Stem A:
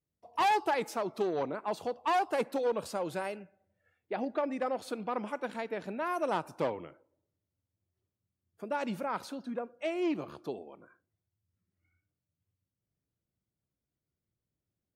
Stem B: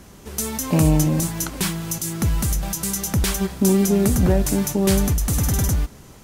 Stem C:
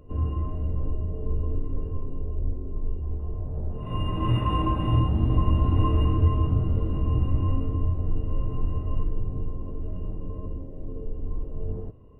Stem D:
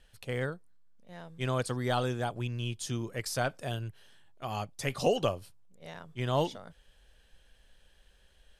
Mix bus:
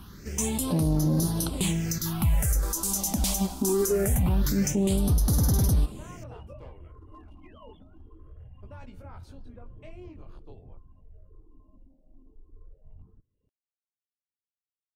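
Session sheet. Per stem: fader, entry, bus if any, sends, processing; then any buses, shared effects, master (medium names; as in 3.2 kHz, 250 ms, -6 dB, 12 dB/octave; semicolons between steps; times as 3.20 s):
-8.0 dB, 0.00 s, bus B, no send, gate -50 dBFS, range -21 dB
0.0 dB, 0.00 s, bus A, no send, none
-17.0 dB, 1.30 s, bus A, no send, reverb removal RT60 0.8 s; peak limiter -19 dBFS, peak gain reduction 9 dB; one-sided clip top -24 dBFS, bottom -22 dBFS
-11.5 dB, 1.25 s, bus B, no send, formants replaced by sine waves; Shepard-style phaser falling 1.3 Hz
bus A: 0.0 dB, phase shifter stages 6, 0.23 Hz, lowest notch 110–2400 Hz; peak limiter -16.5 dBFS, peak gain reduction 11 dB
bus B: 0.0 dB, chorus voices 2, 0.24 Hz, delay 19 ms, depth 3.8 ms; compression 2.5:1, threshold -48 dBFS, peak gain reduction 10.5 dB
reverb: none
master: none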